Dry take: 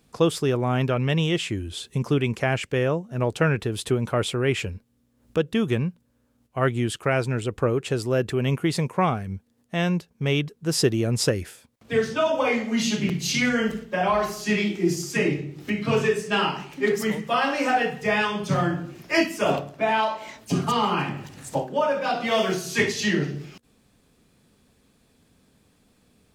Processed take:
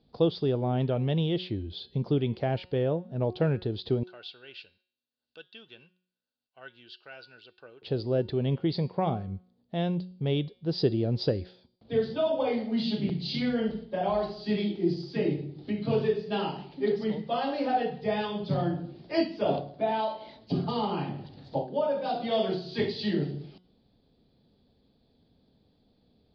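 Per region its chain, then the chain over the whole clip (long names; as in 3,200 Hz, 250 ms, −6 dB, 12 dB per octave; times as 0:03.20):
0:04.03–0:07.82: first difference + hollow resonant body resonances 1,500/2,700 Hz, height 17 dB, ringing for 35 ms
whole clip: Chebyshev low-pass filter 4,700 Hz, order 6; flat-topped bell 1,700 Hz −12 dB; hum removal 182.2 Hz, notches 30; level −3 dB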